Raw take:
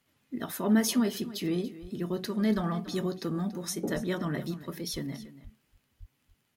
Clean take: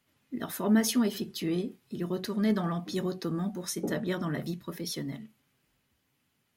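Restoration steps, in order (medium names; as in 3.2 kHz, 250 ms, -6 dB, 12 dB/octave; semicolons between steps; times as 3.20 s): de-click; de-plosive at 1.81/2.55/3.94/4.92/5.43/5.99 s; inverse comb 284 ms -16 dB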